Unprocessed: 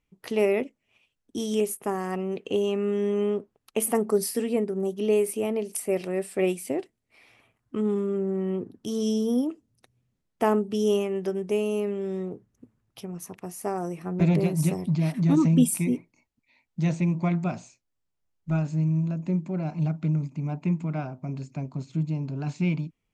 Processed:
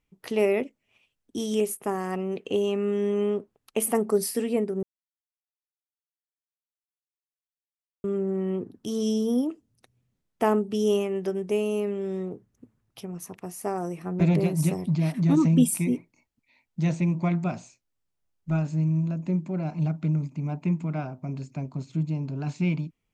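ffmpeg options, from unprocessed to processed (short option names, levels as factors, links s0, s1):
-filter_complex "[0:a]asplit=3[s0][s1][s2];[s0]atrim=end=4.83,asetpts=PTS-STARTPTS,afade=t=out:st=4.826:d=0.004:c=hsin[s3];[s1]atrim=start=4.83:end=8.04,asetpts=PTS-STARTPTS,volume=0[s4];[s2]atrim=start=8.04,asetpts=PTS-STARTPTS,afade=t=in:d=0.004:c=hsin[s5];[s3][s4][s5]concat=n=3:v=0:a=1"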